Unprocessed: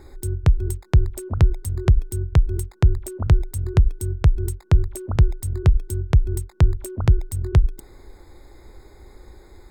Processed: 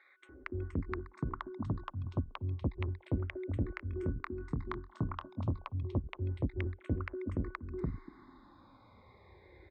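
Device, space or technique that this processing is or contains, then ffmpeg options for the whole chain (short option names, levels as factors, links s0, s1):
barber-pole phaser into a guitar amplifier: -filter_complex "[0:a]asplit=2[s0][s1];[s1]afreqshift=-0.3[s2];[s0][s2]amix=inputs=2:normalize=1,asoftclip=type=tanh:threshold=0.106,highpass=92,equalizer=f=140:t=q:w=4:g=-5,equalizer=f=270:t=q:w=4:g=8,equalizer=f=420:t=q:w=4:g=-4,equalizer=f=740:t=q:w=4:g=-4,equalizer=f=1100:t=q:w=4:g=10,equalizer=f=2100:t=q:w=4:g=6,lowpass=f=3400:w=0.5412,lowpass=f=3400:w=1.3066,asettb=1/sr,asplit=3[s3][s4][s5];[s3]atrim=end=3.714[s6];[s4]atrim=start=3.71:end=5.45,asetpts=PTS-STARTPTS,afade=t=in:d=0.004:c=qsin,afade=t=out:st=1.736:d=0.004:c=qsin,asplit=2[s7][s8];[s8]adelay=25,volume=0.299[s9];[s7][s9]amix=inputs=2:normalize=0,atrim=end_sample=76734[s10];[s5]atrim=start=5.446[s11];[s6][s10]acrossfade=d=0.004:c1=hsin:c2=qsin[s12];[s12][s11]acrossfade=d=0.004:c1=qsin:c2=hsin,acrossover=split=830[s13][s14];[s13]adelay=290[s15];[s15][s14]amix=inputs=2:normalize=0,volume=0.631"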